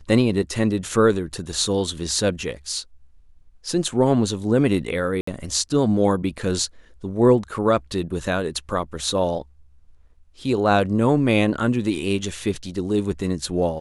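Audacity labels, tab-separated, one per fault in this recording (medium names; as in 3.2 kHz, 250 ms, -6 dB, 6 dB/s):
5.210000	5.270000	dropout 64 ms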